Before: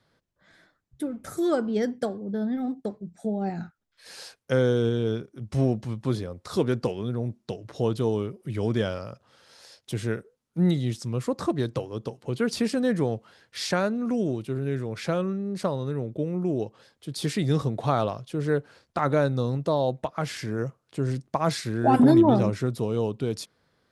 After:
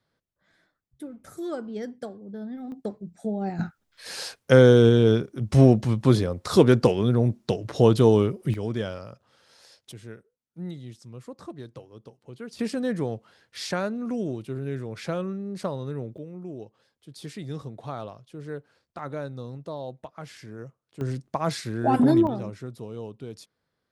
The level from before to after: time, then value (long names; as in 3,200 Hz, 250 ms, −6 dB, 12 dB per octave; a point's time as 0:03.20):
−8 dB
from 0:02.72 −0.5 dB
from 0:03.59 +8 dB
from 0:08.54 −3.5 dB
from 0:09.92 −13.5 dB
from 0:12.59 −3 dB
from 0:16.18 −11 dB
from 0:21.01 −2 dB
from 0:22.27 −10.5 dB